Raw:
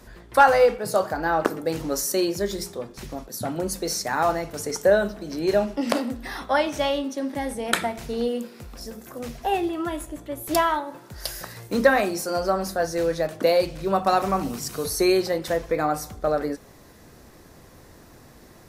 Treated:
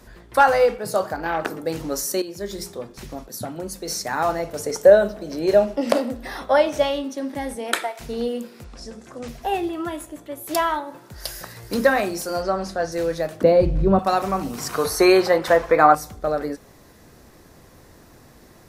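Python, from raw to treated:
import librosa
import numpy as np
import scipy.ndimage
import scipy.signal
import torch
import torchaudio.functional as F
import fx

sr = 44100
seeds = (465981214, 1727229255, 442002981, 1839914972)

y = fx.transformer_sat(x, sr, knee_hz=1600.0, at=(1.16, 1.63))
y = fx.peak_eq(y, sr, hz=560.0, db=7.5, octaves=0.7, at=(4.39, 6.83))
y = fx.highpass(y, sr, hz=fx.line((7.55, 160.0), (7.99, 570.0)), slope=24, at=(7.55, 7.99), fade=0.02)
y = fx.lowpass(y, sr, hz=8500.0, slope=24, at=(8.64, 9.28))
y = fx.highpass(y, sr, hz=fx.line((9.9, 110.0), (10.6, 330.0)), slope=6, at=(9.9, 10.6), fade=0.02)
y = fx.echo_throw(y, sr, start_s=11.14, length_s=0.56, ms=480, feedback_pct=50, wet_db=-6.5)
y = fx.lowpass(y, sr, hz=6500.0, slope=12, at=(12.42, 12.92))
y = fx.tilt_eq(y, sr, slope=-4.5, at=(13.43, 13.99))
y = fx.peak_eq(y, sr, hz=1100.0, db=13.5, octaves=2.4, at=(14.58, 15.95))
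y = fx.edit(y, sr, fx.fade_in_from(start_s=2.22, length_s=0.44, floor_db=-13.0),
    fx.clip_gain(start_s=3.45, length_s=0.43, db=-4.0), tone=tone)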